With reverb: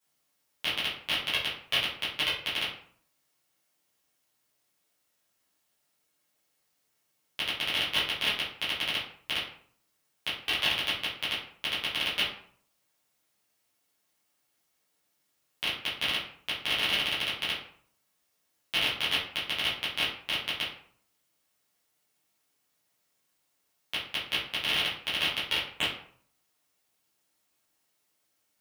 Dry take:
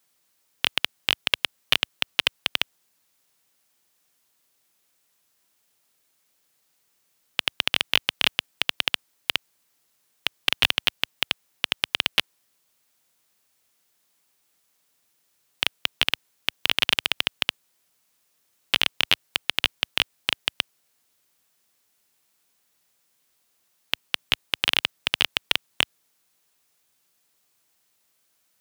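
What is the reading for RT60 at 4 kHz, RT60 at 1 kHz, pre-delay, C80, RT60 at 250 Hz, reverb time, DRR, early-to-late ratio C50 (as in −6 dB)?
0.35 s, 0.55 s, 7 ms, 9.0 dB, 0.60 s, 0.55 s, −11.0 dB, 4.0 dB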